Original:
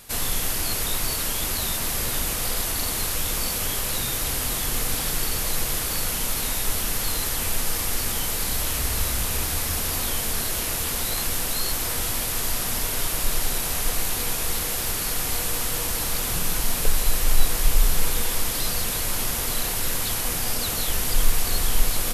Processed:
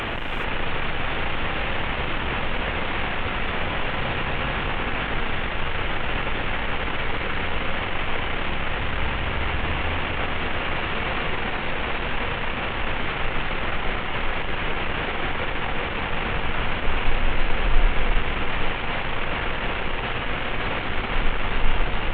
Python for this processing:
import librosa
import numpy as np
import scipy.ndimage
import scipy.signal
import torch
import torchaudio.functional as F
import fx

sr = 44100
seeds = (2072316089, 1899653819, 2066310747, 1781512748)

y = fx.delta_mod(x, sr, bps=16000, step_db=-17.5)
y = y + 10.0 ** (-20.5 / 20.0) * np.pad(y, (int(839 * sr / 1000.0), 0))[:len(y)]
y = fx.rev_gated(y, sr, seeds[0], gate_ms=450, shape='rising', drr_db=1.0)
y = F.gain(torch.from_numpy(y), -3.0).numpy()